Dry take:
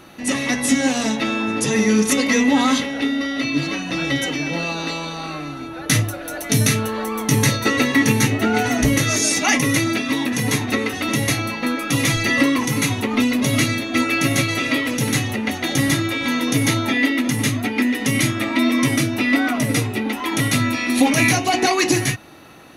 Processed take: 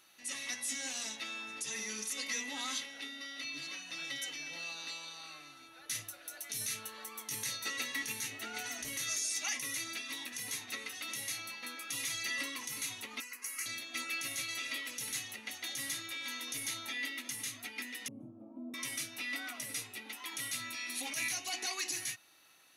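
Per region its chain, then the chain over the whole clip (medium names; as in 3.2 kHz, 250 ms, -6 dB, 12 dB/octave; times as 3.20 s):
13.20–13.66 s: high-pass 390 Hz 24 dB/octave + static phaser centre 1.5 kHz, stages 4
18.08–18.74 s: inverse Chebyshev low-pass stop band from 1.8 kHz, stop band 50 dB + peaking EQ 220 Hz +8.5 dB 0.7 oct
whole clip: pre-emphasis filter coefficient 0.97; peak limiter -16.5 dBFS; treble shelf 10 kHz -10.5 dB; trim -6.5 dB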